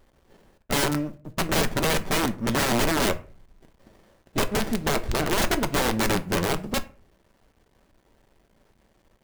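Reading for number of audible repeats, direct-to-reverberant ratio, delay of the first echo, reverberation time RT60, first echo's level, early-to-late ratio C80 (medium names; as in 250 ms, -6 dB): no echo, 9.0 dB, no echo, 0.40 s, no echo, 23.0 dB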